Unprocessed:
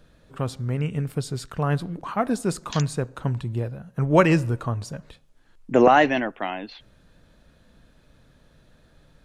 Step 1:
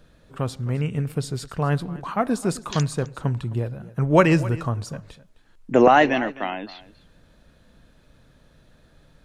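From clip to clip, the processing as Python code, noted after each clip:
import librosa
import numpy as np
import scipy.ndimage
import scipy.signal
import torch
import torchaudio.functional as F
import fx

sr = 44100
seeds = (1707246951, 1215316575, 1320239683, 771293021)

y = x + 10.0 ** (-18.5 / 20.0) * np.pad(x, (int(260 * sr / 1000.0), 0))[:len(x)]
y = y * 10.0 ** (1.0 / 20.0)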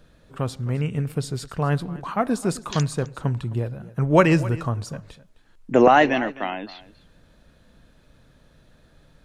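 y = x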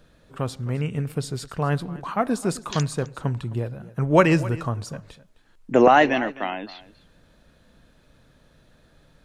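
y = fx.low_shelf(x, sr, hz=160.0, db=-3.0)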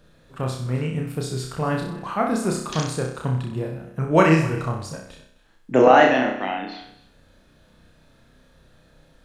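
y = fx.room_flutter(x, sr, wall_m=5.4, rt60_s=0.59)
y = y * 10.0 ** (-1.0 / 20.0)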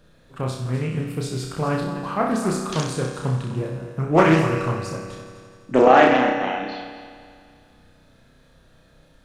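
y = fx.echo_heads(x, sr, ms=84, heads='all three', feedback_pct=57, wet_db=-17)
y = fx.doppler_dist(y, sr, depth_ms=0.41)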